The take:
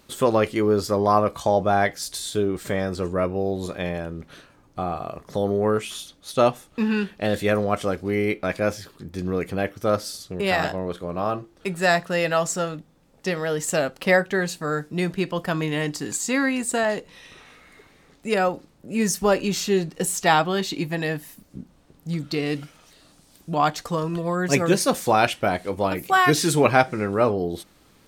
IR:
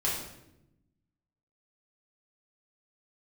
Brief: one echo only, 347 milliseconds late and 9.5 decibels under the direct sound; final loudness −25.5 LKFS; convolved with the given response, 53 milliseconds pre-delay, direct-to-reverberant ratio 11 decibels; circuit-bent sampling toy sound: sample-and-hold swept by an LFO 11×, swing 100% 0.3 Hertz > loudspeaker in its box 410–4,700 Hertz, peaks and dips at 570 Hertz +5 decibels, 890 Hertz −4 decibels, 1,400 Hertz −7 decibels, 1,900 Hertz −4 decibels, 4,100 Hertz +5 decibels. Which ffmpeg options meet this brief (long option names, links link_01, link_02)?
-filter_complex "[0:a]aecho=1:1:347:0.335,asplit=2[link_01][link_02];[1:a]atrim=start_sample=2205,adelay=53[link_03];[link_02][link_03]afir=irnorm=-1:irlink=0,volume=-19dB[link_04];[link_01][link_04]amix=inputs=2:normalize=0,acrusher=samples=11:mix=1:aa=0.000001:lfo=1:lforange=11:lforate=0.3,highpass=410,equalizer=frequency=570:width_type=q:width=4:gain=5,equalizer=frequency=890:width_type=q:width=4:gain=-4,equalizer=frequency=1400:width_type=q:width=4:gain=-7,equalizer=frequency=1900:width_type=q:width=4:gain=-4,equalizer=frequency=4100:width_type=q:width=4:gain=5,lowpass=frequency=4700:width=0.5412,lowpass=frequency=4700:width=1.3066,volume=-1dB"